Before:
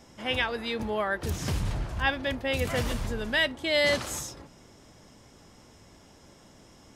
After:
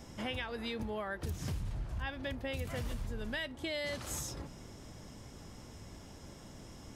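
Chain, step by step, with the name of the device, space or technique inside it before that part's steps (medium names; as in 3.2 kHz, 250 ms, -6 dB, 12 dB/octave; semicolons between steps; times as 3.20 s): ASMR close-microphone chain (bass shelf 190 Hz +8 dB; compression 6:1, threshold -36 dBFS, peak gain reduction 16 dB; treble shelf 11 kHz +5 dB)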